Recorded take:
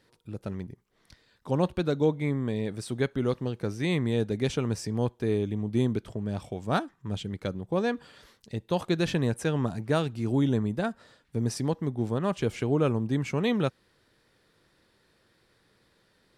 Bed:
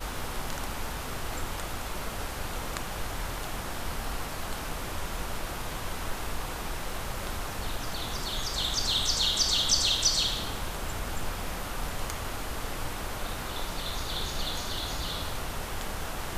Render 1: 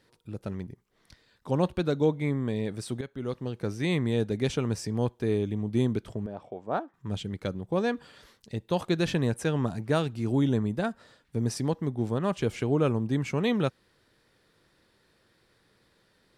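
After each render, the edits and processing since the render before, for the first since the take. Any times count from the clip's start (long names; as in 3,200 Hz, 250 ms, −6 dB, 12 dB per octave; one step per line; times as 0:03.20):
0:03.01–0:03.69: fade in, from −13.5 dB
0:06.26–0:06.94: resonant band-pass 630 Hz, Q 0.95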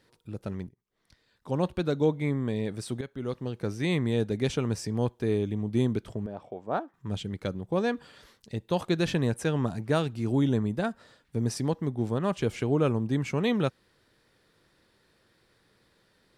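0:00.69–0:02.30: fade in equal-power, from −20.5 dB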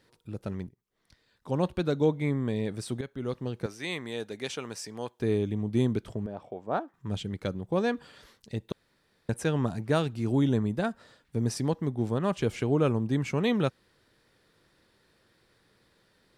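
0:03.66–0:05.20: high-pass filter 870 Hz 6 dB per octave
0:08.72–0:09.29: fill with room tone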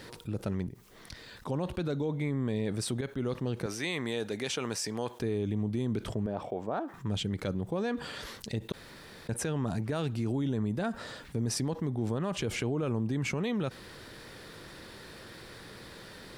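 brickwall limiter −24.5 dBFS, peak gain reduction 11 dB
envelope flattener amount 50%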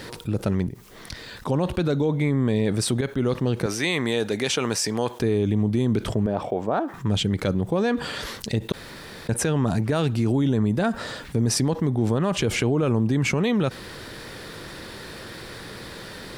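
level +9.5 dB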